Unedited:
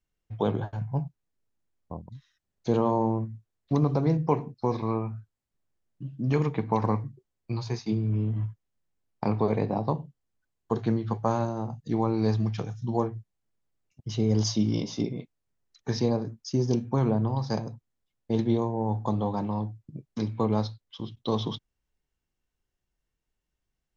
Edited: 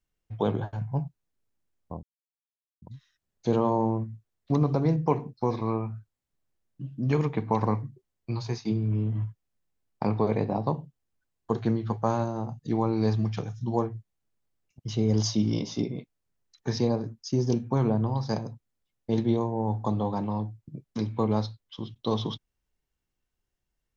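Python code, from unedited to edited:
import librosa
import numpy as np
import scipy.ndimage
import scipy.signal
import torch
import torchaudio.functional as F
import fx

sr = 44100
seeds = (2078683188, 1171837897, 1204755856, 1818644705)

y = fx.edit(x, sr, fx.insert_silence(at_s=2.03, length_s=0.79), tone=tone)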